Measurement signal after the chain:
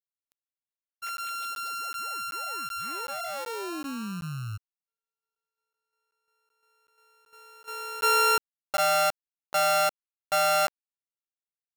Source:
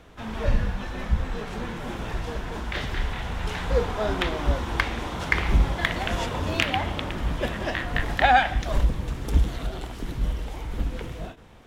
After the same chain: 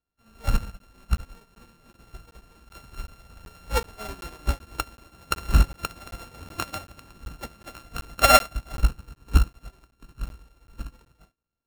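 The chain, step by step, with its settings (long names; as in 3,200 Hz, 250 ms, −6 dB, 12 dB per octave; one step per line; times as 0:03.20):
samples sorted by size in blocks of 32 samples
regular buffer underruns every 0.38 s, samples 512, zero, from 0:00.79
expander for the loud parts 2.5 to 1, over −42 dBFS
level +4.5 dB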